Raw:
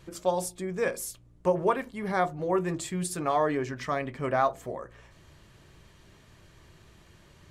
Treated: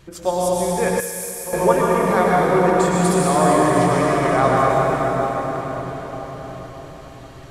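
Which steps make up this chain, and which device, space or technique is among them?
cathedral (reverberation RT60 5.6 s, pre-delay 96 ms, DRR -6 dB); 1.00–1.53 s: pre-emphasis filter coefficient 0.8; trim +5 dB

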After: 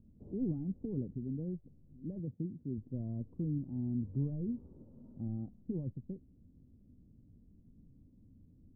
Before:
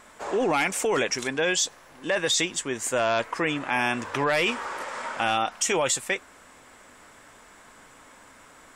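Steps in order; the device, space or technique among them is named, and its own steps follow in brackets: 2.19–2.78 s: high-pass 97 Hz; the neighbour's flat through the wall (low-pass 220 Hz 24 dB/octave; peaking EQ 89 Hz +5 dB 0.63 oct); trim +2.5 dB

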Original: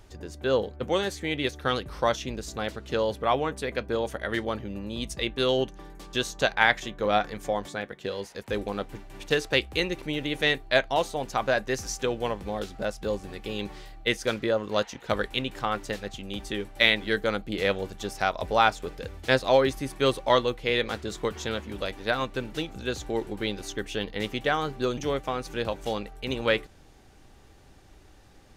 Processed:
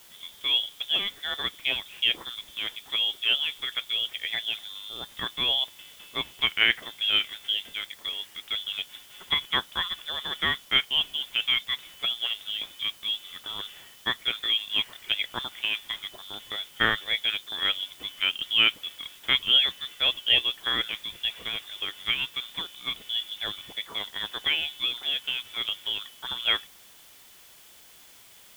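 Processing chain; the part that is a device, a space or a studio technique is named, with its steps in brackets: scrambled radio voice (band-pass 300–2700 Hz; frequency inversion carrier 3.8 kHz; white noise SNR 23 dB)

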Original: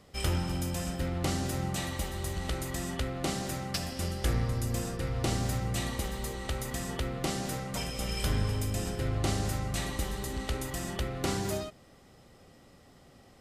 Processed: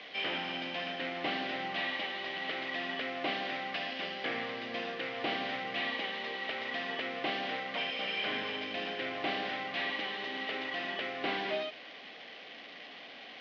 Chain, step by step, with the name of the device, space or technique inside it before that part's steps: digital answering machine (band-pass 320–3000 Hz; one-bit delta coder 32 kbps, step -47.5 dBFS; cabinet simulation 360–4000 Hz, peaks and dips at 370 Hz -10 dB, 540 Hz -8 dB, 910 Hz -9 dB, 1.3 kHz -10 dB, 2.2 kHz +3 dB, 3.1 kHz +5 dB); trim +8.5 dB

